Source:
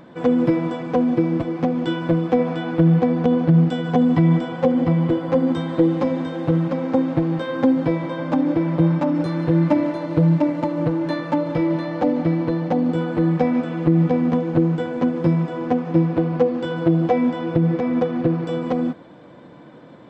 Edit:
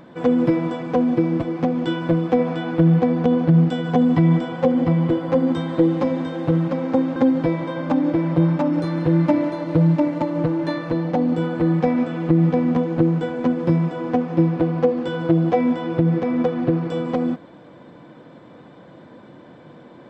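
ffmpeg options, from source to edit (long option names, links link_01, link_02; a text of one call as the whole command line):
ffmpeg -i in.wav -filter_complex "[0:a]asplit=3[link_01][link_02][link_03];[link_01]atrim=end=7.162[link_04];[link_02]atrim=start=7.578:end=11.322[link_05];[link_03]atrim=start=12.468[link_06];[link_04][link_05]acrossfade=duration=0.004:curve1=hsin:curve2=hsin[link_07];[link_07][link_06]acrossfade=duration=0.004:curve1=hsin:curve2=hsin" out.wav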